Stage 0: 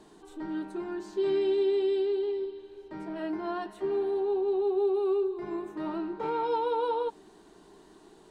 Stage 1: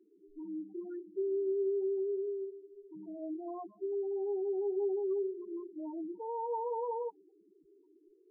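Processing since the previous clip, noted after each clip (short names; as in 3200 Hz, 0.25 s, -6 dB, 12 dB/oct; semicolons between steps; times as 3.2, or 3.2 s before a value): loudest bins only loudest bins 4; gain -6 dB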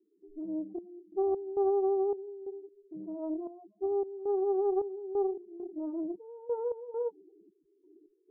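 steep low-pass 690 Hz 36 dB/oct; step gate "..xxxxx...xx" 134 bpm -12 dB; Doppler distortion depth 0.26 ms; gain +5.5 dB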